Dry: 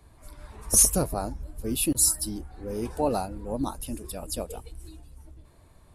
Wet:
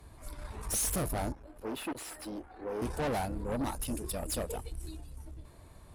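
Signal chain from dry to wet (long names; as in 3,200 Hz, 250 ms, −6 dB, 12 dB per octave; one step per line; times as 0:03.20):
tube saturation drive 33 dB, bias 0.4
0:01.32–0:02.82: three-way crossover with the lows and the highs turned down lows −17 dB, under 270 Hz, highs −15 dB, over 3,200 Hz
level +3.5 dB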